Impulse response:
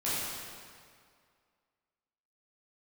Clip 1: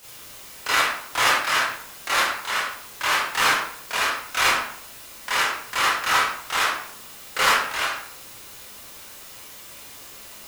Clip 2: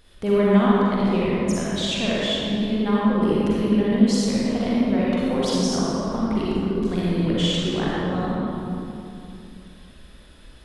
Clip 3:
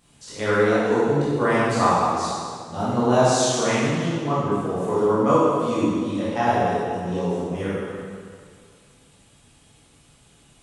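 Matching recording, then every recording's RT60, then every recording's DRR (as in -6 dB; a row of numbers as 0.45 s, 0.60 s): 3; 0.65 s, 2.8 s, 2.1 s; -10.5 dB, -7.5 dB, -11.0 dB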